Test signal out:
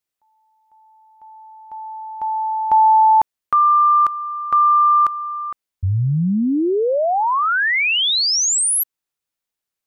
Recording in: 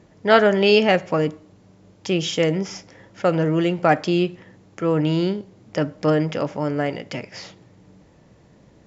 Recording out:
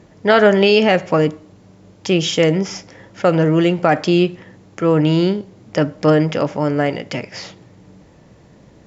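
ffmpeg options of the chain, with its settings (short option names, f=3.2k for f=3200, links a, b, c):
-af "alimiter=level_in=6.5dB:limit=-1dB:release=50:level=0:latency=1,volume=-1dB"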